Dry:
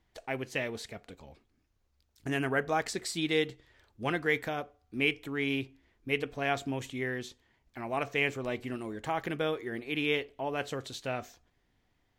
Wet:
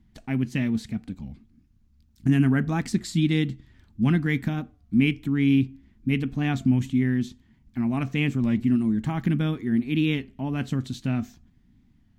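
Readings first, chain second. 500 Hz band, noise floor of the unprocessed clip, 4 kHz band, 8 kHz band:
-3.5 dB, -74 dBFS, 0.0 dB, n/a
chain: resonant low shelf 330 Hz +13.5 dB, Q 3; record warp 33 1/3 rpm, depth 100 cents

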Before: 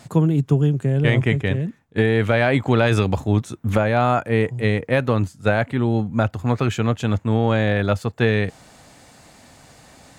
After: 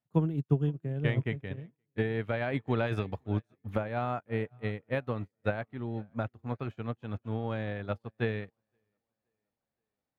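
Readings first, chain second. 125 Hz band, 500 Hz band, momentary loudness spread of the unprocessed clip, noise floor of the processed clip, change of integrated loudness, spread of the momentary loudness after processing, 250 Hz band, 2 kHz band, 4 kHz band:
-13.5 dB, -13.5 dB, 5 LU, under -85 dBFS, -13.5 dB, 8 LU, -13.5 dB, -14.5 dB, -17.0 dB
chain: bell 7600 Hz -13 dB 1.1 oct; tape echo 0.522 s, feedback 63%, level -18 dB, low-pass 4400 Hz; upward expander 2.5:1, over -37 dBFS; gain -7 dB

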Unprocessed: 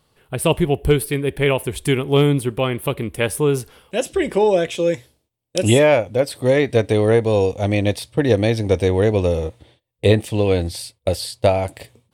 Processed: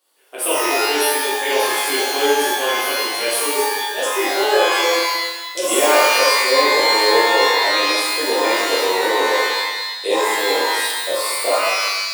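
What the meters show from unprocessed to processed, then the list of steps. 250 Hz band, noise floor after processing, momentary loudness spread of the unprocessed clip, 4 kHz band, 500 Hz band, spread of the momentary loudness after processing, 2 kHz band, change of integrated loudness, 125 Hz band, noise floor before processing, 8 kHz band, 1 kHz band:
-7.5 dB, -29 dBFS, 9 LU, +11.5 dB, -1.0 dB, 7 LU, +10.0 dB, +2.5 dB, under -40 dB, -70 dBFS, +10.0 dB, +10.5 dB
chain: steep high-pass 330 Hz 36 dB/oct; high shelf 6100 Hz +11.5 dB; shimmer reverb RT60 1.1 s, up +12 st, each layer -2 dB, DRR -9 dB; gain -10.5 dB

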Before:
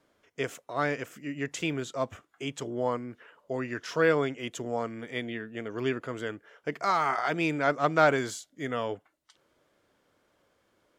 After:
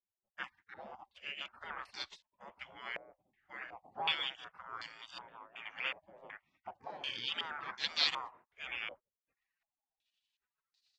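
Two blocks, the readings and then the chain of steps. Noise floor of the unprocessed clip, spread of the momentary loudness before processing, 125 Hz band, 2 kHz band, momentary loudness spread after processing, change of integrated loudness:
-72 dBFS, 13 LU, -28.5 dB, -8.5 dB, 18 LU, -9.5 dB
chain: spectral gate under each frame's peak -25 dB weak; stepped low-pass 2.7 Hz 570–4300 Hz; gain +3 dB

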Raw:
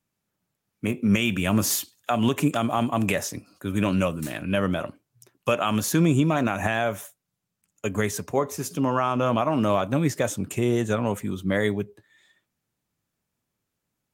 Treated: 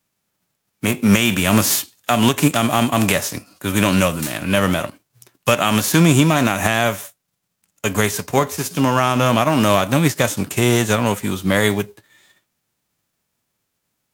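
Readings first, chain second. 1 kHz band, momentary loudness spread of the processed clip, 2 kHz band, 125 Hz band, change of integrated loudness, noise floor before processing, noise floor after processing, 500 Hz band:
+7.5 dB, 9 LU, +9.5 dB, +7.5 dB, +7.5 dB, -82 dBFS, -75 dBFS, +6.0 dB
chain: spectral whitening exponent 0.6; ending taper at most 430 dB/s; gain +7 dB

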